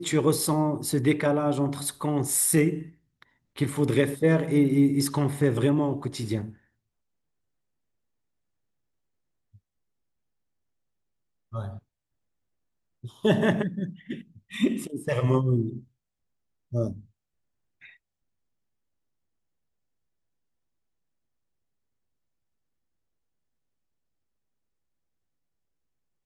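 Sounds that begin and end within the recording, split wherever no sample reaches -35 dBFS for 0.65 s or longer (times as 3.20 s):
11.54–11.77 s
13.04–15.78 s
16.73–16.99 s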